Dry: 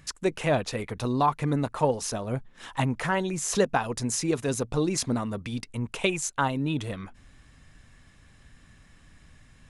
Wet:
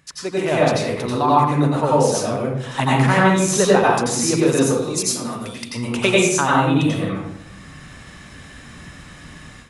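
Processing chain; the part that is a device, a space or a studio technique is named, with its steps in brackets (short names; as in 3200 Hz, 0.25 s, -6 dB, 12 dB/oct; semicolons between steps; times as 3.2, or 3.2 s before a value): 4.7–5.63 pre-emphasis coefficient 0.8; far laptop microphone (reverb RT60 0.80 s, pre-delay 83 ms, DRR -5.5 dB; HPF 150 Hz 6 dB/oct; AGC gain up to 14.5 dB); gain -2 dB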